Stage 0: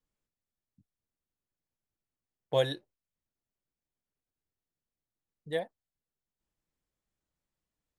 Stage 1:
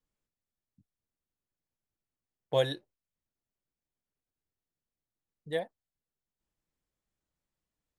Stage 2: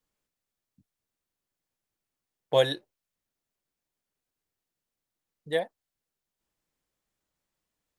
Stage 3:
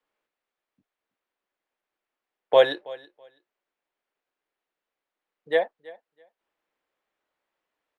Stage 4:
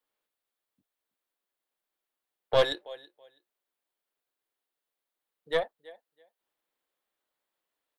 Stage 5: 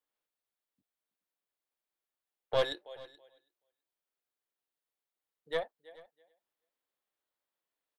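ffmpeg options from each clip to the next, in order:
ffmpeg -i in.wav -af anull out.wav
ffmpeg -i in.wav -af "lowshelf=frequency=210:gain=-7.5,volume=6dB" out.wav
ffmpeg -i in.wav -filter_complex "[0:a]acrossover=split=330 3200:gain=0.0891 1 0.112[link_01][link_02][link_03];[link_01][link_02][link_03]amix=inputs=3:normalize=0,aecho=1:1:327|654:0.0891|0.016,volume=7dB" out.wav
ffmpeg -i in.wav -af "aexciter=amount=2.4:drive=3.1:freq=3300,aeval=exprs='(tanh(3.55*val(0)+0.55)-tanh(0.55))/3.55':channel_layout=same,volume=-3dB" out.wav
ffmpeg -i in.wav -af "aecho=1:1:428:0.0794,volume=-6dB" out.wav

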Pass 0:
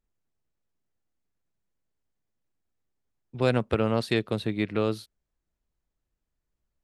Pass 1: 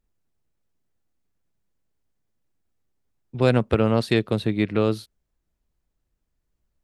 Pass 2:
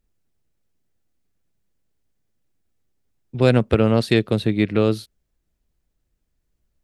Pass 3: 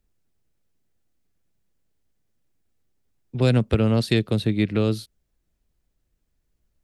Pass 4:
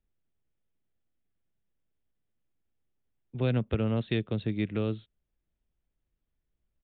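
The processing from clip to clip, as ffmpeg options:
ffmpeg -i in.wav -af "lowshelf=frequency=420:gain=3.5,volume=3dB" out.wav
ffmpeg -i in.wav -af "equalizer=frequency=1000:width_type=o:width=1:gain=-4,volume=3.5dB" out.wav
ffmpeg -i in.wav -filter_complex "[0:a]acrossover=split=240|3000[link_01][link_02][link_03];[link_02]acompressor=threshold=-33dB:ratio=1.5[link_04];[link_01][link_04][link_03]amix=inputs=3:normalize=0" out.wav
ffmpeg -i in.wav -af "aresample=8000,aresample=44100,volume=-8.5dB" out.wav

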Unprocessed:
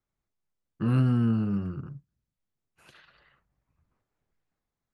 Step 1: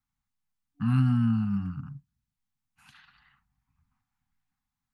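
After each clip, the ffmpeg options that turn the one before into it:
ffmpeg -i in.wav -af "afftfilt=real='re*(1-between(b*sr/4096,290,730))':imag='im*(1-between(b*sr/4096,290,730))':win_size=4096:overlap=0.75" out.wav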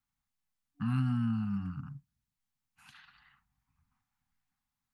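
ffmpeg -i in.wav -filter_complex "[0:a]lowshelf=frequency=330:gain=-3.5,asplit=2[link_01][link_02];[link_02]acompressor=threshold=-33dB:ratio=6,volume=1dB[link_03];[link_01][link_03]amix=inputs=2:normalize=0,volume=-7dB" out.wav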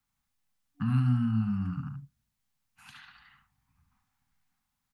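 ffmpeg -i in.wav -filter_complex "[0:a]acrossover=split=190[link_01][link_02];[link_02]acompressor=threshold=-42dB:ratio=2[link_03];[link_01][link_03]amix=inputs=2:normalize=0,aecho=1:1:72:0.447,volume=5dB" out.wav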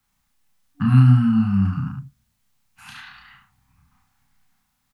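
ffmpeg -i in.wav -filter_complex "[0:a]asplit=2[link_01][link_02];[link_02]adelay=31,volume=-2.5dB[link_03];[link_01][link_03]amix=inputs=2:normalize=0,volume=9dB" out.wav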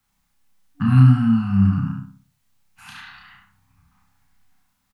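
ffmpeg -i in.wav -filter_complex "[0:a]asplit=2[link_01][link_02];[link_02]adelay=61,lowpass=frequency=2000:poles=1,volume=-5dB,asplit=2[link_03][link_04];[link_04]adelay=61,lowpass=frequency=2000:poles=1,volume=0.44,asplit=2[link_05][link_06];[link_06]adelay=61,lowpass=frequency=2000:poles=1,volume=0.44,asplit=2[link_07][link_08];[link_08]adelay=61,lowpass=frequency=2000:poles=1,volume=0.44,asplit=2[link_09][link_10];[link_10]adelay=61,lowpass=frequency=2000:poles=1,volume=0.44[link_11];[link_01][link_03][link_05][link_07][link_09][link_11]amix=inputs=6:normalize=0" out.wav

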